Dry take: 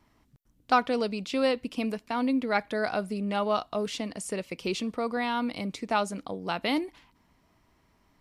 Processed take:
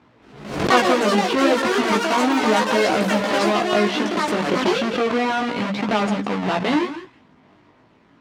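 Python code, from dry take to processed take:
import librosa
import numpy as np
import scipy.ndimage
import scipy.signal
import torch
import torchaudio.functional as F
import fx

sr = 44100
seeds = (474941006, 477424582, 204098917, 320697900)

p1 = fx.halfwave_hold(x, sr)
p2 = fx.hum_notches(p1, sr, base_hz=50, count=4)
p3 = fx.over_compress(p2, sr, threshold_db=-28.0, ratio=-1.0)
p4 = p2 + (p3 * librosa.db_to_amplitude(-1.0))
p5 = fx.wow_flutter(p4, sr, seeds[0], rate_hz=2.1, depth_cents=18.0)
p6 = fx.bandpass_edges(p5, sr, low_hz=140.0, high_hz=3200.0)
p7 = fx.echo_pitch(p6, sr, ms=224, semitones=7, count=2, db_per_echo=-3.0)
p8 = p7 + fx.echo_single(p7, sr, ms=165, db=-12.0, dry=0)
p9 = fx.chorus_voices(p8, sr, voices=2, hz=0.33, base_ms=17, depth_ms=3.1, mix_pct=45)
p10 = fx.pre_swell(p9, sr, db_per_s=77.0)
y = p10 * librosa.db_to_amplitude(4.0)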